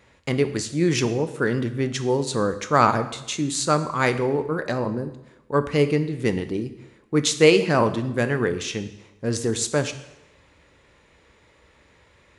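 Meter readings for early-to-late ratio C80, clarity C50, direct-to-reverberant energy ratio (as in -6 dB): 14.5 dB, 12.5 dB, 9.5 dB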